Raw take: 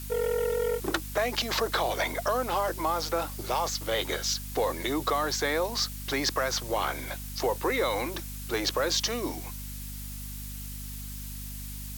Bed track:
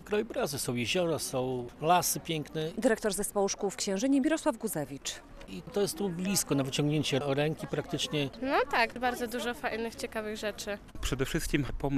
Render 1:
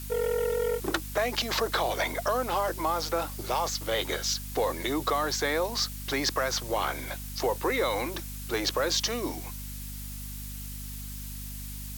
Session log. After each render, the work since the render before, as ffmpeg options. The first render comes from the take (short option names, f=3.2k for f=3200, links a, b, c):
-af anull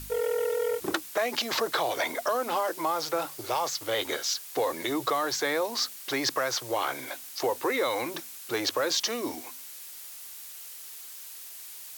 -af "bandreject=f=50:t=h:w=4,bandreject=f=100:t=h:w=4,bandreject=f=150:t=h:w=4,bandreject=f=200:t=h:w=4,bandreject=f=250:t=h:w=4"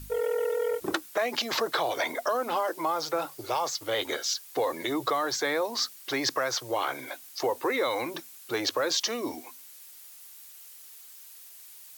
-af "afftdn=nr=7:nf=-44"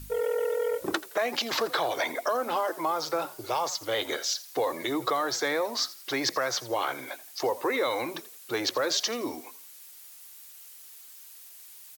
-filter_complex "[0:a]asplit=4[a][b][c][d];[b]adelay=84,afreqshift=55,volume=-18dB[e];[c]adelay=168,afreqshift=110,volume=-28.2dB[f];[d]adelay=252,afreqshift=165,volume=-38.3dB[g];[a][e][f][g]amix=inputs=4:normalize=0"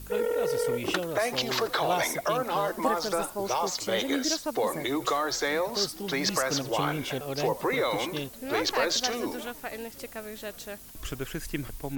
-filter_complex "[1:a]volume=-4dB[a];[0:a][a]amix=inputs=2:normalize=0"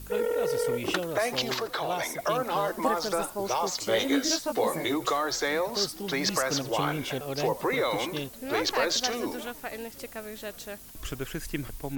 -filter_complex "[0:a]asettb=1/sr,asplit=3[a][b][c];[a]atrim=end=3.854[d];[b]atrim=start=3.85:end=4.94,asetpts=PTS-STARTPTS,afade=t=in:d=0.004:c=qsin,afade=t=out:st=1.086:d=0.004:c=qsin,asplit=2[e][f];[f]adelay=18,volume=-4dB[g];[e][g]amix=inputs=2:normalize=0,atrim=end_sample=48069[h];[c]atrim=start=4.936[i];[d][h]acrossfade=d=0.004:c1=hsin:c2=qsin[j];[j][i]acrossfade=d=0.004:c1=qsin:c2=hsin,asplit=3[k][l][m];[k]atrim=end=1.542[n];[l]atrim=start=1.538:end=2.192,asetpts=PTS-STARTPTS,volume=-4dB[o];[m]atrim=start=2.188[p];[n][o]acrossfade=d=0.004:c1=hsin:c2=hsin[q];[q][p]acrossfade=d=0.004:c1=hsin:c2=hsin"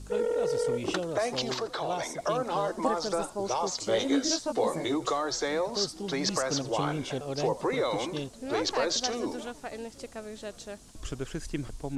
-af "lowpass=f=8.6k:w=0.5412,lowpass=f=8.6k:w=1.3066,equalizer=f=2.1k:w=0.85:g=-6.5"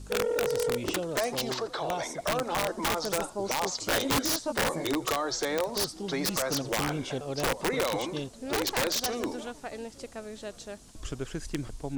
-af "aeval=exprs='(mod(10.6*val(0)+1,2)-1)/10.6':c=same"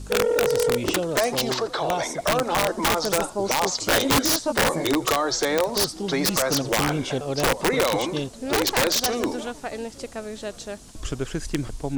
-af "volume=7dB"